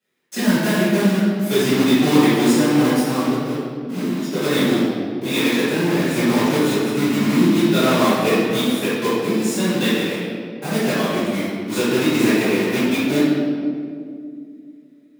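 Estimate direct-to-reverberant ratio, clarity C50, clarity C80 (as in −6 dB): −16.0 dB, −3.0 dB, 0.0 dB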